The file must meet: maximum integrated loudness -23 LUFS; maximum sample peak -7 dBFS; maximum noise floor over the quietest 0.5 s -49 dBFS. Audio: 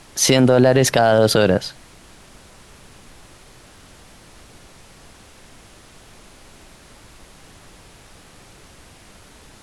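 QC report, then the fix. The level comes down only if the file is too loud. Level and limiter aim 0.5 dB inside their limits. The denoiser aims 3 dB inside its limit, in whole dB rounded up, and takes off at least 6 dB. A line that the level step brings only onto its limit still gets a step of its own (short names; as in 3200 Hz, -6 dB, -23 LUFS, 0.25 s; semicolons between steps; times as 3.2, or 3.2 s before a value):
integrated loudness -15.0 LUFS: fail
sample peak -4.0 dBFS: fail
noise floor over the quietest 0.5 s -46 dBFS: fail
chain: gain -8.5 dB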